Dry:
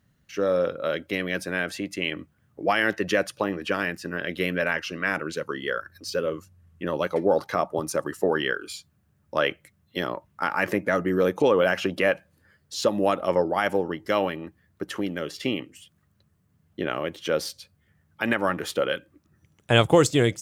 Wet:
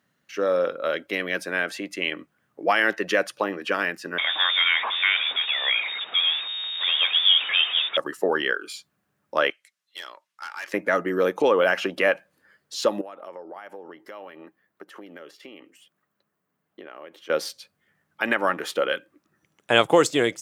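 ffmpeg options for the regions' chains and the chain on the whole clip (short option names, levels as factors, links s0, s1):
-filter_complex "[0:a]asettb=1/sr,asplit=3[s0][s1][s2];[s0]atrim=end=4.184[s3];[s1]atrim=start=4.18:end=7.97,asetpts=PTS-STARTPTS,afade=t=in:d=0.004:c=qsin,afade=t=out:st=3.786:d=0.004:c=qsin,aeval=exprs='val(0)+0.5*0.0501*sgn(val(0))':c=same,lowpass=f=3200:t=q:w=0.5098,lowpass=f=3200:t=q:w=0.6013,lowpass=f=3200:t=q:w=0.9,lowpass=f=3200:t=q:w=2.563,afreqshift=-3800[s4];[s2]atrim=start=7.966[s5];[s3][s4]acrossfade=d=0.004:c1=hsin:c2=qsin[s6];[s6][s5]acrossfade=d=0.004:c1=qsin:c2=hsin,asettb=1/sr,asplit=3[s7][s8][s9];[s7]atrim=end=9.504[s10];[s8]atrim=start=9.5:end=10.74,asetpts=PTS-STARTPTS,afade=t=in:d=0.004:c=qsin,afade=t=out:st=1.236:d=0.004:c=qsin,bandpass=f=5000:t=q:w=0.91,highshelf=f=4800:g=3.5,asoftclip=type=hard:threshold=0.0282[s11];[s9]atrim=start=10.736[s12];[s10][s11]acrossfade=d=0.004:c1=hsin:c2=qsin[s13];[s13][s12]acrossfade=d=0.004:c1=qsin:c2=hsin,asettb=1/sr,asplit=3[s14][s15][s16];[s14]atrim=end=13.014[s17];[s15]atrim=start=13.01:end=17.3,asetpts=PTS-STARTPTS,afade=t=in:d=0.004:c=qsin,afade=t=out:st=4.286:d=0.004:c=qsin,aemphasis=mode=production:type=bsi,acompressor=threshold=0.0158:ratio=6:attack=3.2:release=140:knee=1:detection=peak,lowpass=f=1200:p=1[s18];[s16]atrim=start=17.296[s19];[s17][s18]acrossfade=d=0.004:c1=hsin:c2=qsin[s20];[s20][s19]acrossfade=d=0.004:c1=qsin:c2=hsin,highpass=240,equalizer=f=1400:w=0.41:g=4.5,volume=0.841"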